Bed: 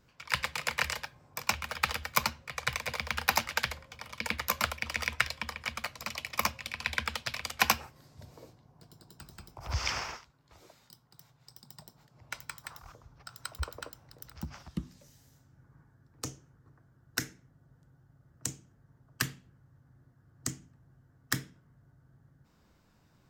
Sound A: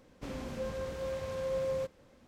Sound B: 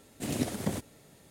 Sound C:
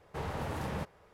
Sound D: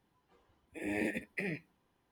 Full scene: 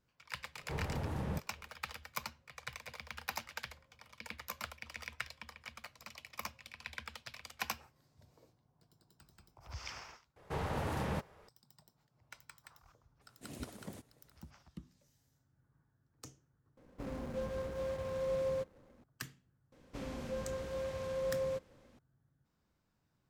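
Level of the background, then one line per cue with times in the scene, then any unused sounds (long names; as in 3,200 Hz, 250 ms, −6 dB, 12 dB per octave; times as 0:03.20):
bed −13.5 dB
0:00.55: mix in C −7.5 dB + low-shelf EQ 380 Hz +9 dB
0:10.36: mix in C
0:13.21: mix in B −16 dB
0:16.77: overwrite with A −1.5 dB + running median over 15 samples
0:19.72: mix in A −2.5 dB
not used: D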